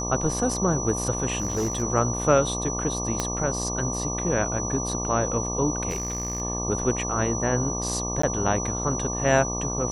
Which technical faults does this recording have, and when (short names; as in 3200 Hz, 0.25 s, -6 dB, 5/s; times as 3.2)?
buzz 60 Hz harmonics 20 -31 dBFS
tone 5900 Hz -30 dBFS
1.38–1.83 clipped -21 dBFS
3.2 pop -10 dBFS
5.9–6.42 clipped -24.5 dBFS
8.22–8.23 gap 14 ms